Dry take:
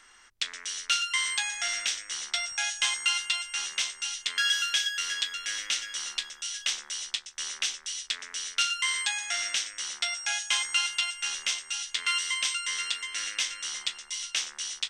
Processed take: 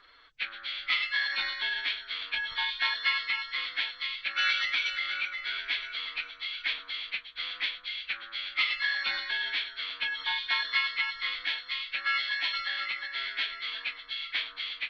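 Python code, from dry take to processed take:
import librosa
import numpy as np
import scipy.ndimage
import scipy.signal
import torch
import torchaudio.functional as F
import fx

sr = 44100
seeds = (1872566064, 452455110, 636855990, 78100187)

y = fx.freq_compress(x, sr, knee_hz=1100.0, ratio=1.5)
y = fx.pitch_keep_formants(y, sr, semitones=4.5)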